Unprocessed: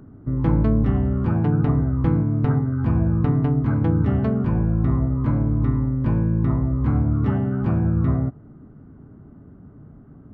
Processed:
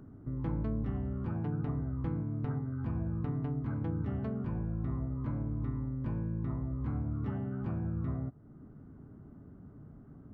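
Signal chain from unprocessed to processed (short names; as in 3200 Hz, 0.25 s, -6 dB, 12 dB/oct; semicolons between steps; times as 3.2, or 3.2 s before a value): compressor 1.5:1, threshold -40 dBFS, peak gain reduction 9.5 dB; gain -6.5 dB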